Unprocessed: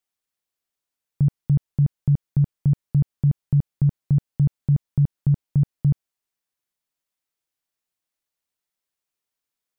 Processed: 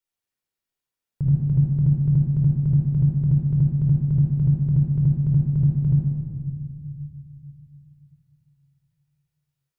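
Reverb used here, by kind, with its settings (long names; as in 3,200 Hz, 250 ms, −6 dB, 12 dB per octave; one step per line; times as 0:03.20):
rectangular room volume 3,600 cubic metres, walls mixed, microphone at 4.6 metres
level −7 dB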